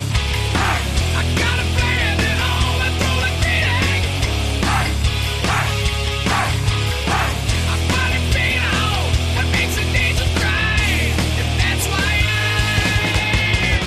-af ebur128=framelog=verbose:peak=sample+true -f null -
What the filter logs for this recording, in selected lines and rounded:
Integrated loudness:
  I:         -17.6 LUFS
  Threshold: -27.5 LUFS
Loudness range:
  LRA:         1.6 LU
  Threshold: -37.6 LUFS
  LRA low:   -18.5 LUFS
  LRA high:  -16.9 LUFS
Sample peak:
  Peak:       -6.3 dBFS
True peak:
  Peak:       -6.2 dBFS